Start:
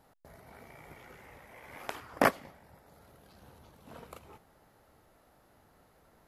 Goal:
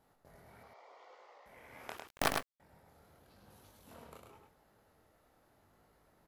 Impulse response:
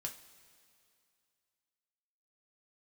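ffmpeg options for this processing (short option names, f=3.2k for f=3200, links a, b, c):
-filter_complex "[0:a]asettb=1/sr,asplit=3[a][b][c];[a]atrim=end=3.504[d];[b]atrim=start=3.5:end=3.94,asetpts=PTS-STARTPTS,afade=t=in:d=0.004:c=qsin,afade=t=out:st=0.436:d=0.004:c=qsin,highshelf=f=3.8k:g=10.5[e];[c]atrim=start=3.936[f];[d][e]acrossfade=d=0.004:c1=hsin:c2=qsin[g];[g][f]acrossfade=d=0.004:c1=qsin:c2=hsin,flanger=delay=19:depth=7.5:speed=0.85,asettb=1/sr,asplit=3[h][i][j];[h]atrim=end=0.634[k];[i]atrim=start=0.63:end=1.46,asetpts=PTS-STARTPTS,afade=t=in:d=0.004:c=qsin,afade=t=out:st=0.826:d=0.004:c=qsin,highpass=f=470:w=0.5412,highpass=f=470:w=1.3066,equalizer=f=500:t=q:w=4:g=4,equalizer=f=720:t=q:w=4:g=3,equalizer=f=1.1k:t=q:w=4:g=7,equalizer=f=1.6k:t=q:w=4:g=-9,equalizer=f=2.4k:t=q:w=4:g=-7,equalizer=f=4.5k:t=q:w=4:g=4,lowpass=f=6.1k:w=0.5412,lowpass=f=6.1k:w=1.3066[l];[j]atrim=start=1.456[m];[k][l]acrossfade=d=0.004:c1=hsin:c2=qsin[n];[n][m]acrossfade=d=0.004:c1=qsin:c2=hsin,asettb=1/sr,asplit=3[o][p][q];[o]atrim=end=1.974[r];[p]atrim=start=1.97:end=2.6,asetpts=PTS-STARTPTS,afade=t=in:d=0.004:c=qsin,afade=t=out:st=0.626:d=0.004:c=qsin,acrusher=bits=4:dc=4:mix=0:aa=0.000001[s];[q]atrim=start=2.596[t];[r][s]acrossfade=d=0.004:c1=hsin:c2=qsin[u];[u][t]acrossfade=d=0.004:c1=qsin:c2=hsin,aecho=1:1:103:0.596,volume=-3.5dB"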